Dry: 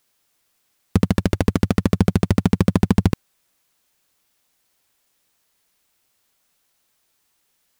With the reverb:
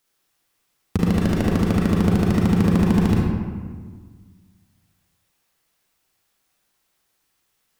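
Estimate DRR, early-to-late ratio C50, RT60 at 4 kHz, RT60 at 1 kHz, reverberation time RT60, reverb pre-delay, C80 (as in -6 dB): -3.5 dB, -0.5 dB, 0.95 s, 1.6 s, 1.6 s, 34 ms, 2.0 dB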